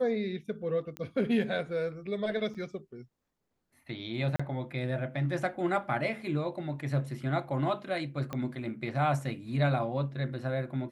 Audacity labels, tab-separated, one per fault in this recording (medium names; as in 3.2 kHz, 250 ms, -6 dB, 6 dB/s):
0.970000	0.970000	pop -24 dBFS
2.540000	2.550000	dropout 6.7 ms
4.360000	4.390000	dropout 35 ms
8.330000	8.330000	pop -21 dBFS